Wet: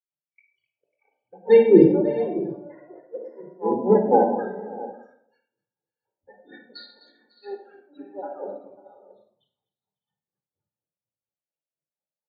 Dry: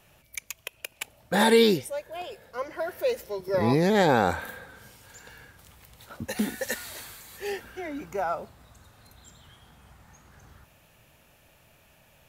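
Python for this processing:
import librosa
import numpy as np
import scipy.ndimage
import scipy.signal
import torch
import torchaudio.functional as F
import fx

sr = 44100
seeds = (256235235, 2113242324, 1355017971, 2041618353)

p1 = scipy.signal.sosfilt(scipy.signal.butter(2, 290.0, 'highpass', fs=sr, output='sos'), x)
p2 = fx.peak_eq(p1, sr, hz=2000.0, db=-10.5, octaves=1.7)
p3 = fx.transient(p2, sr, attack_db=-7, sustain_db=8)
p4 = fx.filter_lfo_lowpass(p3, sr, shape='saw_down', hz=3.4, low_hz=400.0, high_hz=6200.0, q=1.4)
p5 = fx.spec_topn(p4, sr, count=16)
p6 = fx.granulator(p5, sr, seeds[0], grain_ms=204.0, per_s=4.2, spray_ms=21.0, spread_st=0)
p7 = p6 + fx.echo_multitap(p6, sr, ms=(255, 546, 608, 669), db=(-12.5, -14.5, -14.0, -12.0), dry=0)
p8 = fx.room_shoebox(p7, sr, seeds[1], volume_m3=2400.0, walls='furnished', distance_m=4.2)
p9 = fx.band_widen(p8, sr, depth_pct=100)
y = p9 * 10.0 ** (-1.0 / 20.0)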